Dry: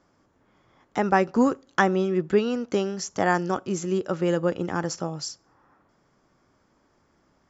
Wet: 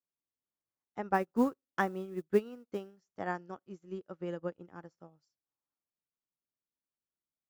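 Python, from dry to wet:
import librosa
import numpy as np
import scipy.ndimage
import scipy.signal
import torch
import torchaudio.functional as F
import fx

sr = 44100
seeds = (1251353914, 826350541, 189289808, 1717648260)

y = fx.lowpass(x, sr, hz=2700.0, slope=6)
y = fx.mod_noise(y, sr, seeds[0], snr_db=30, at=(1.13, 3.13), fade=0.02)
y = fx.upward_expand(y, sr, threshold_db=-39.0, expansion=2.5)
y = y * 10.0 ** (-5.0 / 20.0)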